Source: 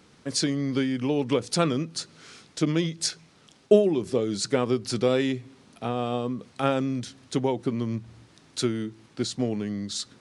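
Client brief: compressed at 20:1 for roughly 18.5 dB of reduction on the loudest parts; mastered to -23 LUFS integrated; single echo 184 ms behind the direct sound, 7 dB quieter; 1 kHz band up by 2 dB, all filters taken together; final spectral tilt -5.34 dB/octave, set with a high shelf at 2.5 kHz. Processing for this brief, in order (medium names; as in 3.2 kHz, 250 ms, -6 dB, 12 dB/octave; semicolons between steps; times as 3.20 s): peaking EQ 1 kHz +4.5 dB; treble shelf 2.5 kHz -9 dB; compression 20:1, threshold -29 dBFS; delay 184 ms -7 dB; trim +12.5 dB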